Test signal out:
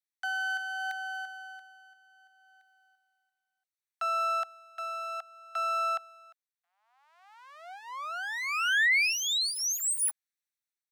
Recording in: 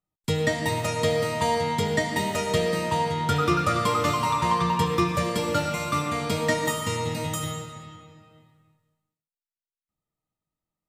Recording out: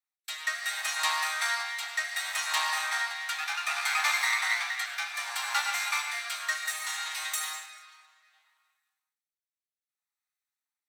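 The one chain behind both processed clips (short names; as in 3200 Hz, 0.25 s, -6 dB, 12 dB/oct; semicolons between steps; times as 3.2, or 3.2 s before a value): minimum comb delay 0.51 ms; steep high-pass 750 Hz 72 dB/oct; rotary speaker horn 0.65 Hz; gain +3.5 dB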